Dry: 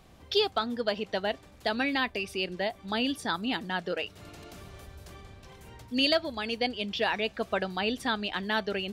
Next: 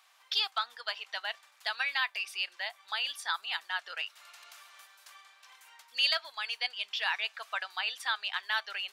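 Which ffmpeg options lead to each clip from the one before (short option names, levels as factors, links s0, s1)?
-af "highpass=f=1000:w=0.5412,highpass=f=1000:w=1.3066"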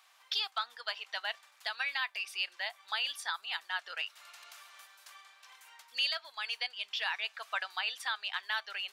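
-af "alimiter=limit=0.0891:level=0:latency=1:release=464"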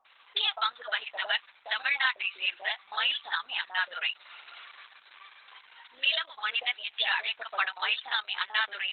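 -filter_complex "[0:a]acrossover=split=800[s0][s1];[s1]adelay=50[s2];[s0][s2]amix=inputs=2:normalize=0,volume=2.82" -ar 48000 -c:a libopus -b:a 8k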